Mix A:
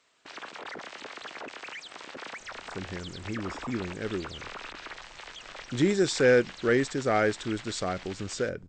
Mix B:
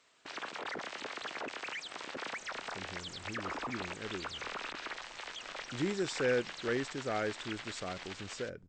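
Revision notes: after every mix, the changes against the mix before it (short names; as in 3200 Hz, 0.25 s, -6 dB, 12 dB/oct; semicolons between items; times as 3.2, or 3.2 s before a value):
speech -10.0 dB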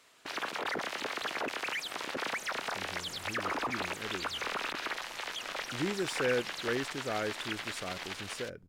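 background +5.5 dB; master: remove brick-wall FIR low-pass 8500 Hz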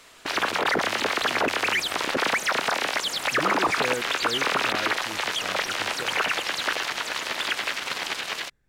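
speech: entry -2.40 s; background +11.5 dB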